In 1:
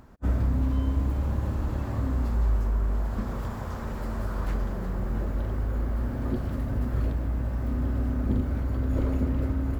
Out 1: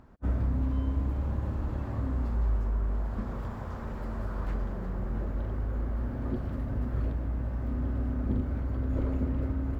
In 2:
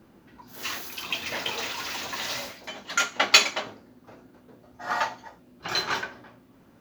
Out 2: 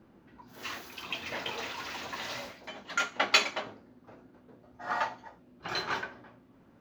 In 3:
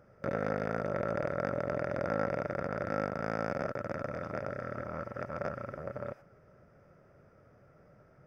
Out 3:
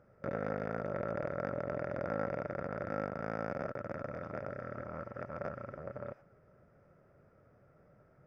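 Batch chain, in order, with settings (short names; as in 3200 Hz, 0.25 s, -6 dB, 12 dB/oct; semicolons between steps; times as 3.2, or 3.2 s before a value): high shelf 4600 Hz -11.5 dB; gain -3.5 dB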